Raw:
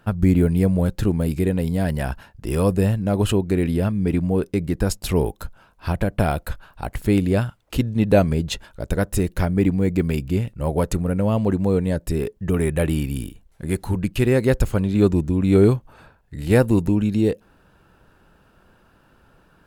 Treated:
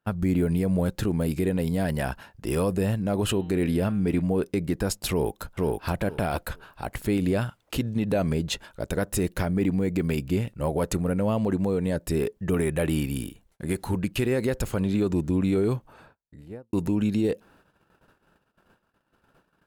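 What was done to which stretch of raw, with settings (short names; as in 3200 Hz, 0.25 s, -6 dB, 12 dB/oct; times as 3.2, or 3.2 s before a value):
3.25–4.22 de-hum 154.3 Hz, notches 26
5.1–5.9 echo throw 0.47 s, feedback 15%, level -3 dB
15.73–16.73 studio fade out
whole clip: gate -53 dBFS, range -25 dB; low shelf 97 Hz -11 dB; limiter -16 dBFS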